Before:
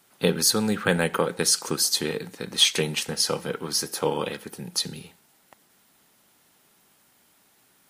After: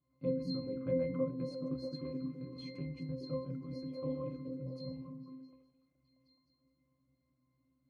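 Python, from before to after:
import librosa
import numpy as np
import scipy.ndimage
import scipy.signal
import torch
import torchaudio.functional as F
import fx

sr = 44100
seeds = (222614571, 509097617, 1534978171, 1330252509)

y = fx.low_shelf(x, sr, hz=490.0, db=12.0)
y = fx.octave_resonator(y, sr, note='C', decay_s=0.43)
y = fx.echo_stepped(y, sr, ms=212, hz=210.0, octaves=0.7, feedback_pct=70, wet_db=0.0)
y = F.gain(torch.from_numpy(y), -4.0).numpy()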